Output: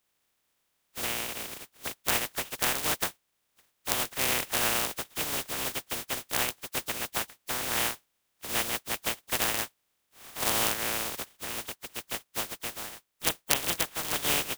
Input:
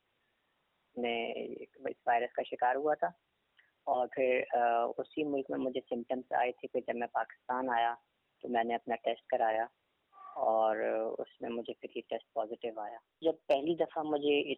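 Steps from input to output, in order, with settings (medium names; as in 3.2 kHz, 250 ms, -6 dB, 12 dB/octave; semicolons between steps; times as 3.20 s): spectral contrast reduction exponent 0.12; trim +2.5 dB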